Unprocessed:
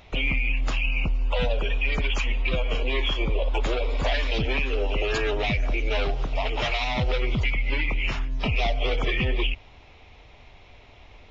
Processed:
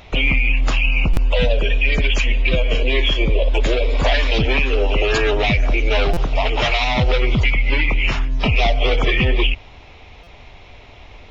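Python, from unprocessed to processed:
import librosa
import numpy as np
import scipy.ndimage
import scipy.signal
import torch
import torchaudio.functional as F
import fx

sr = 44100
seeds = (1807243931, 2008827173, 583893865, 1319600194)

y = fx.spec_box(x, sr, start_s=1.28, length_s=2.66, low_hz=690.0, high_hz=1500.0, gain_db=-7)
y = fx.buffer_glitch(y, sr, at_s=(1.13, 6.13, 10.23), block=256, repeats=6)
y = y * librosa.db_to_amplitude(8.0)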